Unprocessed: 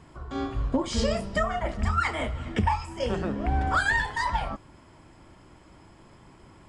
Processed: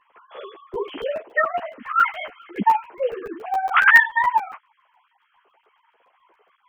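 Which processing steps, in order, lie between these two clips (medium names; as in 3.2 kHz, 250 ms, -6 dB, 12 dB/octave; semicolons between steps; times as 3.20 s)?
formants replaced by sine waves; crackling interface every 0.14 s, samples 64, zero, from 0.74 s; three-phase chorus; trim +8.5 dB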